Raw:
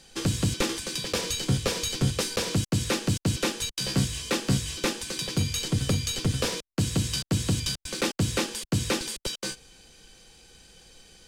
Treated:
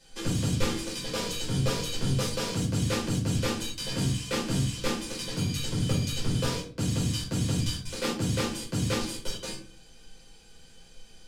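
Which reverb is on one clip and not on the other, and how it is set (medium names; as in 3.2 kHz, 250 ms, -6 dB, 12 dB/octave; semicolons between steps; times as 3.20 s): simulated room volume 320 m³, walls furnished, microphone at 4.9 m; trim -11 dB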